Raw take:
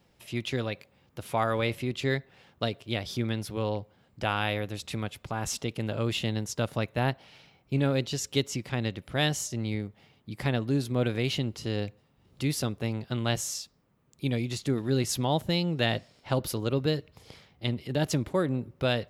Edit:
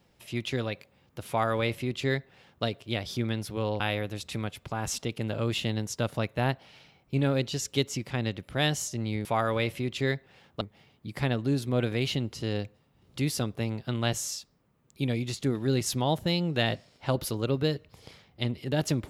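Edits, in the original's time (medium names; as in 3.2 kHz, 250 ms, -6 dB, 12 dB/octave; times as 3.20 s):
1.28–2.64 s: copy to 9.84 s
3.80–4.39 s: delete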